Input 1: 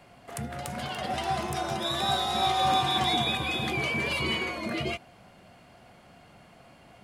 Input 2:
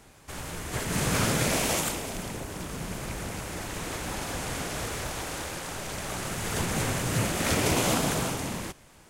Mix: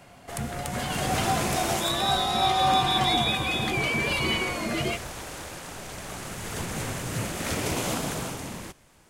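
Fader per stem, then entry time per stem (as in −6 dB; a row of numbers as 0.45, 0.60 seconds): +2.5, −3.5 decibels; 0.00, 0.00 seconds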